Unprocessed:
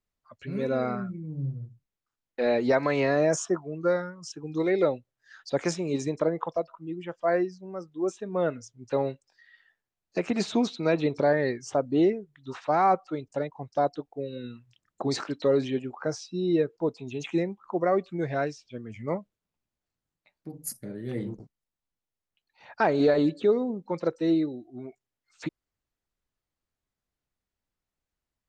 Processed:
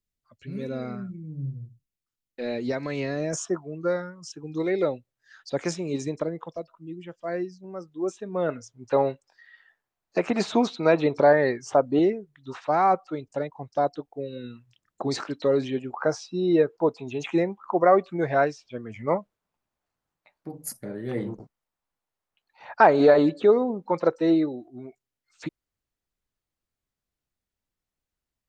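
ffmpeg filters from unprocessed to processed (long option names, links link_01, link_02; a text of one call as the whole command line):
ffmpeg -i in.wav -af "asetnsamples=nb_out_samples=441:pad=0,asendcmd='3.33 equalizer g -1.5;6.23 equalizer g -9;7.64 equalizer g 0;8.49 equalizer g 8;11.99 equalizer g 1.5;15.94 equalizer g 9.5;24.68 equalizer g -1.5',equalizer=frequency=940:width_type=o:width=2.2:gain=-10.5" out.wav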